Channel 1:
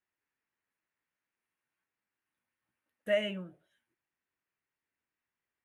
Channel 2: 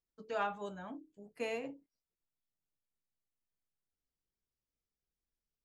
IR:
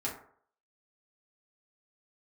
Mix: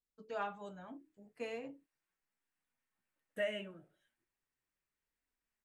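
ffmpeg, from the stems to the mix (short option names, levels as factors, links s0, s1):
-filter_complex "[0:a]alimiter=limit=0.0841:level=0:latency=1:release=432,adelay=300,volume=0.944,asplit=2[s0][s1];[s1]volume=0.126[s2];[1:a]highshelf=f=7300:g=-6.5,volume=0.944[s3];[2:a]atrim=start_sample=2205[s4];[s2][s4]afir=irnorm=-1:irlink=0[s5];[s0][s3][s5]amix=inputs=3:normalize=0,equalizer=f=8000:w=7.1:g=6,flanger=delay=4.1:depth=4.5:regen=-53:speed=0.38:shape=sinusoidal"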